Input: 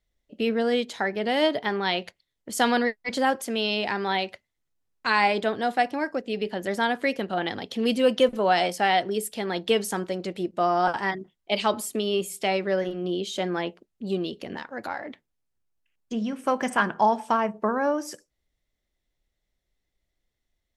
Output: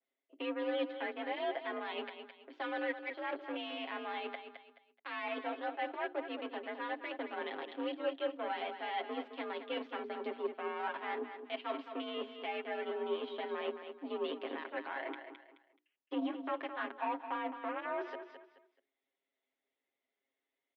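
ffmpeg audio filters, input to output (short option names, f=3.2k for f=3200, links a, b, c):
-filter_complex "[0:a]areverse,acompressor=threshold=-36dB:ratio=12,areverse,aeval=exprs='0.0562*(cos(1*acos(clip(val(0)/0.0562,-1,1)))-cos(1*PI/2))+0.00631*(cos(7*acos(clip(val(0)/0.0562,-1,1)))-cos(7*PI/2))+0.000708*(cos(8*acos(clip(val(0)/0.0562,-1,1)))-cos(8*PI/2))':c=same,alimiter=level_in=11.5dB:limit=-24dB:level=0:latency=1:release=277,volume=-11.5dB,asplit=2[a][b];[b]aecho=0:1:214|428|642:0.335|0.0971|0.0282[c];[a][c]amix=inputs=2:normalize=0,highpass=f=210:t=q:w=0.5412,highpass=f=210:t=q:w=1.307,lowpass=f=3.3k:t=q:w=0.5176,lowpass=f=3.3k:t=q:w=0.7071,lowpass=f=3.3k:t=q:w=1.932,afreqshift=54,bandreject=f=60:t=h:w=6,bandreject=f=120:t=h:w=6,bandreject=f=180:t=h:w=6,bandreject=f=240:t=h:w=6,bandreject=f=300:t=h:w=6,bandreject=f=360:t=h:w=6,bandreject=f=420:t=h:w=6,aecho=1:1:7.4:0.78,adynamicequalizer=threshold=0.00158:dfrequency=2000:dqfactor=0.7:tfrequency=2000:tqfactor=0.7:attack=5:release=100:ratio=0.375:range=1.5:mode=cutabove:tftype=highshelf,volume=8dB"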